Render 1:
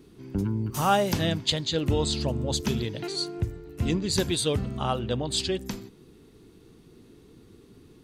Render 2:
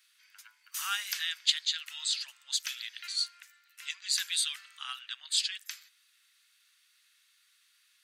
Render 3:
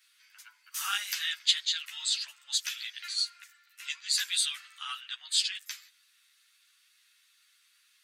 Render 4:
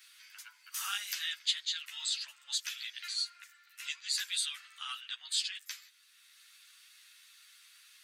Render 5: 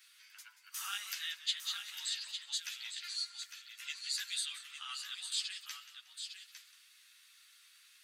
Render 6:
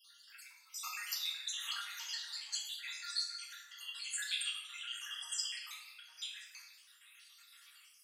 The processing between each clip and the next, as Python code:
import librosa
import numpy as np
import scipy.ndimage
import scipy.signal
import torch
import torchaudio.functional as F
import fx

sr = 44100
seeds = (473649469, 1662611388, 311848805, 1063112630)

y1 = scipy.signal.sosfilt(scipy.signal.butter(6, 1500.0, 'highpass', fs=sr, output='sos'), x)
y2 = fx.ensemble(y1, sr)
y2 = F.gain(torch.from_numpy(y2), 4.5).numpy()
y3 = fx.band_squash(y2, sr, depth_pct=40)
y3 = F.gain(torch.from_numpy(y3), -4.0).numpy()
y4 = y3 + 10.0 ** (-8.0 / 20.0) * np.pad(y3, (int(855 * sr / 1000.0), 0))[:len(y3)]
y4 = fx.echo_warbled(y4, sr, ms=182, feedback_pct=37, rate_hz=2.8, cents=67, wet_db=-14.0)
y4 = F.gain(torch.from_numpy(y4), -4.0).numpy()
y5 = fx.spec_dropout(y4, sr, seeds[0], share_pct=71)
y5 = fx.room_shoebox(y5, sr, seeds[1], volume_m3=460.0, walls='mixed', distance_m=1.7)
y5 = F.gain(torch.from_numpy(y5), 2.5).numpy()